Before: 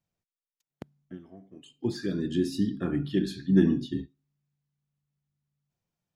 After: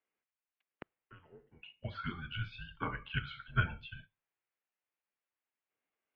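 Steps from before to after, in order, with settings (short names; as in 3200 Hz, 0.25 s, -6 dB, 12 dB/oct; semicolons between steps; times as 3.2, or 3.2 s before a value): tilt +3 dB/oct; mistuned SSB -250 Hz 460–2900 Hz; upward expander 1.5:1, over -44 dBFS; gain +7.5 dB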